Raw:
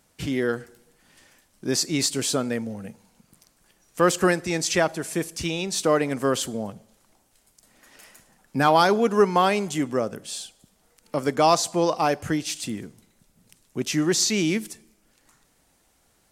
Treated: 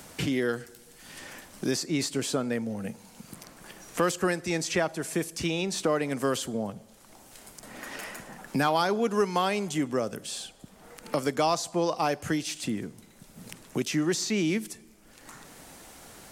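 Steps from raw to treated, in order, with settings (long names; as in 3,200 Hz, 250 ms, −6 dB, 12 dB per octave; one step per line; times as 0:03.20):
multiband upward and downward compressor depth 70%
level −4 dB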